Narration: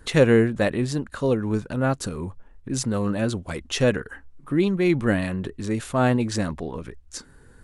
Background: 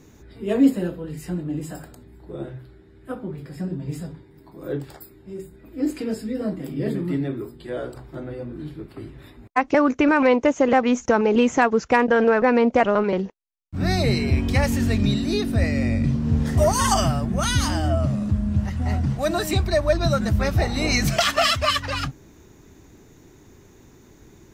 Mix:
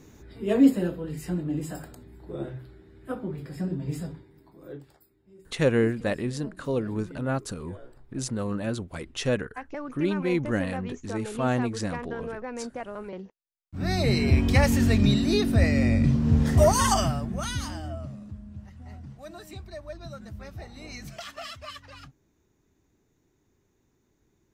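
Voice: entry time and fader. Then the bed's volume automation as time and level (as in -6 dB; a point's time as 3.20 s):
5.45 s, -5.5 dB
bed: 4.11 s -1.5 dB
5.02 s -18.5 dB
12.93 s -18.5 dB
14.29 s 0 dB
16.64 s 0 dB
18.47 s -20 dB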